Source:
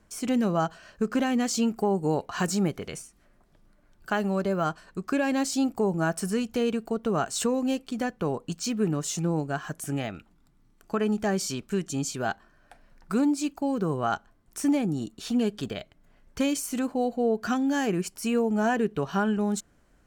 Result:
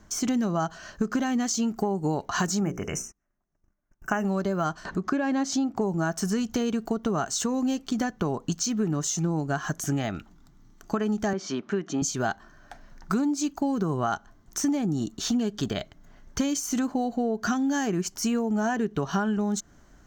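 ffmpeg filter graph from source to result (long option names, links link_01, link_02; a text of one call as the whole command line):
ffmpeg -i in.wav -filter_complex "[0:a]asettb=1/sr,asplit=3[link_01][link_02][link_03];[link_01]atrim=end=2.604[link_04];[link_02]atrim=start=2.6:end=4.25,asetpts=PTS-STARTPTS,afade=type=in:duration=0.004:curve=qsin,afade=type=out:start_time=1.646:duration=0.004:curve=qsin,bandreject=frequency=60:width_type=h:width=6,bandreject=frequency=120:width_type=h:width=6,bandreject=frequency=180:width_type=h:width=6,bandreject=frequency=240:width_type=h:width=6,bandreject=frequency=300:width_type=h:width=6,bandreject=frequency=360:width_type=h:width=6,bandreject=frequency=420:width_type=h:width=6,bandreject=frequency=480:width_type=h:width=6,bandreject=frequency=540:width_type=h:width=6,agate=range=-26dB:threshold=-56dB:ratio=16:release=100:detection=peak,asuperstop=centerf=3900:order=20:qfactor=1.8[link_05];[link_03]atrim=start=4.246[link_06];[link_04][link_05]acrossfade=duration=0.004:curve1=hsin:curve2=qsin[link_07];[link_07][link_06]acrossfade=duration=0.004:curve1=qsin:curve2=hsin,asettb=1/sr,asplit=3[link_08][link_09][link_10];[link_08]atrim=end=4.854[link_11];[link_09]atrim=start=4.85:end=5.81,asetpts=PTS-STARTPTS,afade=type=in:duration=0.004:curve=qsin,afade=type=out:start_time=0.956:duration=0.004:curve=qsin,highpass=frequency=110:poles=1,aemphasis=mode=reproduction:type=75kf,acompressor=mode=upward:threshold=-29dB:ratio=2.5:attack=3.2:release=140:knee=2.83:detection=peak[link_12];[link_10]atrim=start=5.806[link_13];[link_11][link_12]acrossfade=duration=0.004:curve1=hsin:curve2=qsin[link_14];[link_14][link_13]acrossfade=duration=0.004:curve1=qsin:curve2=hsin,asettb=1/sr,asplit=3[link_15][link_16][link_17];[link_15]atrim=end=11.334[link_18];[link_16]atrim=start=11.33:end=12.02,asetpts=PTS-STARTPTS,afade=type=in:duration=0.004:curve=qsin,afade=type=out:start_time=0.686:duration=0.004:curve=qsin,highpass=260,lowpass=2300,acompressor=mode=upward:threshold=-37dB:ratio=2.5:attack=3.2:release=140:knee=2.83:detection=peak[link_19];[link_17]atrim=start=12.016[link_20];[link_18][link_19]acrossfade=duration=0.004:curve1=hsin:curve2=qsin[link_21];[link_21][link_20]acrossfade=duration=0.004:curve1=qsin:curve2=hsin,equalizer=frequency=500:width_type=o:width=0.33:gain=-7,equalizer=frequency=2500:width_type=o:width=0.33:gain=-7,equalizer=frequency=6300:width_type=o:width=0.33:gain=10,acompressor=threshold=-31dB:ratio=6,equalizer=frequency=9900:width_type=o:width=0.63:gain=-12.5,volume=8dB" out.wav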